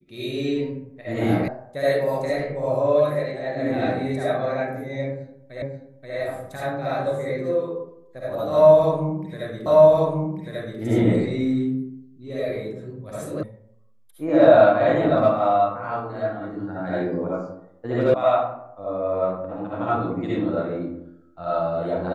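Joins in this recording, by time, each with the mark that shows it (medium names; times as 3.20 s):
1.48 s: sound stops dead
5.62 s: repeat of the last 0.53 s
9.66 s: repeat of the last 1.14 s
13.43 s: sound stops dead
18.14 s: sound stops dead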